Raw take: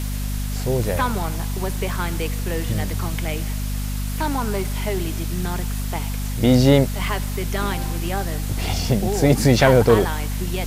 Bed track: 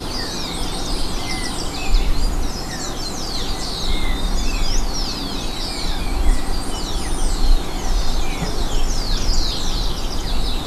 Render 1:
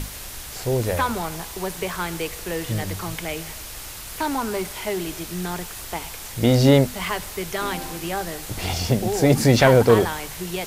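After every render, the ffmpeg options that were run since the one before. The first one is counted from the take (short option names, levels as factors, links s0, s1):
-af "bandreject=f=50:t=h:w=6,bandreject=f=100:t=h:w=6,bandreject=f=150:t=h:w=6,bandreject=f=200:t=h:w=6,bandreject=f=250:t=h:w=6"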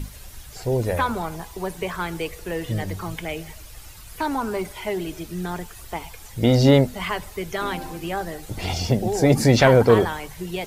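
-af "afftdn=nr=11:nf=-36"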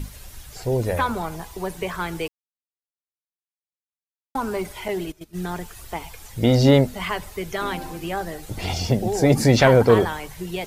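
-filter_complex "[0:a]asettb=1/sr,asplit=3[s0][s1][s2];[s0]atrim=end=4.884[s3];[s1]atrim=start=4.88:end=5.48,asetpts=PTS-STARTPTS,afade=t=in:d=0.004:c=qsin,afade=t=out:st=0.596:d=0.004:c=qsin,agate=range=0.126:threshold=0.0282:ratio=16:release=100:detection=peak[s4];[s2]atrim=start=5.476[s5];[s3][s4]acrossfade=d=0.004:c1=hsin:c2=qsin[s6];[s6][s5]acrossfade=d=0.004:c1=qsin:c2=hsin,asplit=3[s7][s8][s9];[s7]atrim=end=2.28,asetpts=PTS-STARTPTS,afade=t=out:st=2.276:d=0.004:c=hsin[s10];[s8]atrim=start=2.28:end=4.35,asetpts=PTS-STARTPTS,volume=0[s11];[s9]atrim=start=4.35,asetpts=PTS-STARTPTS,afade=t=in:d=0.004:c=hsin[s12];[s10][s11][s12]concat=n=3:v=0:a=1"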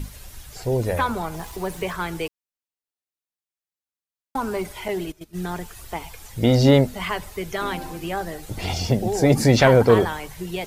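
-filter_complex "[0:a]asettb=1/sr,asplit=3[s0][s1][s2];[s0]atrim=end=1.344[s3];[s1]atrim=start=1.34:end=1.93,asetpts=PTS-STARTPTS,afade=t=in:d=0.004:c=qsin,afade=t=out:st=0.586:d=0.004:c=qsin,aeval=exprs='val(0)+0.5*0.00891*sgn(val(0))':c=same[s4];[s2]atrim=start=1.926[s5];[s3][s4]acrossfade=d=0.004:c1=hsin:c2=qsin[s6];[s6][s5]acrossfade=d=0.004:c1=qsin:c2=hsin"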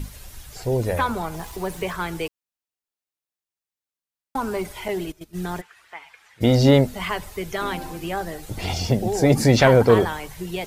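-filter_complex "[0:a]asplit=3[s0][s1][s2];[s0]afade=t=out:st=5.6:d=0.02[s3];[s1]bandpass=f=1800:t=q:w=1.7,afade=t=in:st=5.6:d=0.02,afade=t=out:st=6.4:d=0.02[s4];[s2]afade=t=in:st=6.4:d=0.02[s5];[s3][s4][s5]amix=inputs=3:normalize=0"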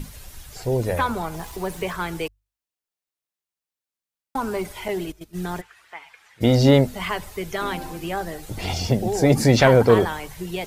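-af "bandreject=f=50:t=h:w=6,bandreject=f=100:t=h:w=6"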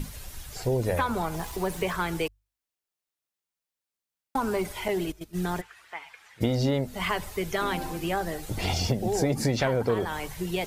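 -af "acompressor=threshold=0.0794:ratio=6"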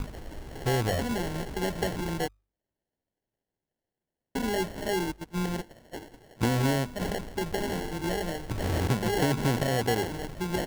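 -filter_complex "[0:a]acrossover=split=530|2400[s0][s1][s2];[s1]asoftclip=type=tanh:threshold=0.0224[s3];[s0][s3][s2]amix=inputs=3:normalize=0,acrusher=samples=36:mix=1:aa=0.000001"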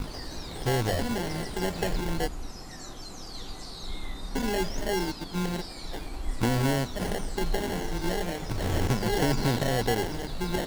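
-filter_complex "[1:a]volume=0.158[s0];[0:a][s0]amix=inputs=2:normalize=0"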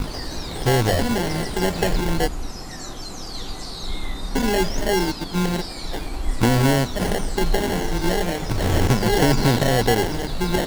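-af "volume=2.51"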